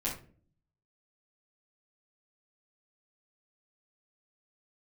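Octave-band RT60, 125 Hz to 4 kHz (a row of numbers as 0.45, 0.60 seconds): 0.90, 0.70, 0.50, 0.30, 0.35, 0.25 seconds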